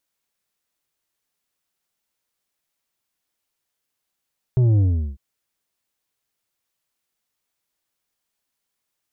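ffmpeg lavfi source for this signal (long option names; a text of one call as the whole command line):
ffmpeg -f lavfi -i "aevalsrc='0.2*clip((0.6-t)/0.38,0,1)*tanh(2.24*sin(2*PI*130*0.6/log(65/130)*(exp(log(65/130)*t/0.6)-1)))/tanh(2.24)':duration=0.6:sample_rate=44100" out.wav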